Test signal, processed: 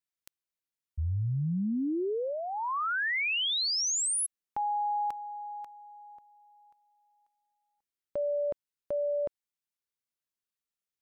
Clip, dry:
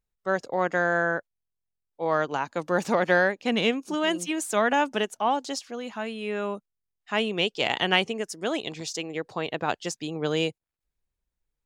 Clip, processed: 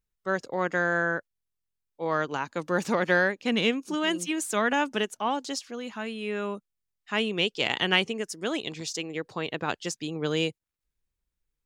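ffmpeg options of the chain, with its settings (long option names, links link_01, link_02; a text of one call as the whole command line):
ffmpeg -i in.wav -af "equalizer=frequency=710:width_type=o:width=0.79:gain=-6" out.wav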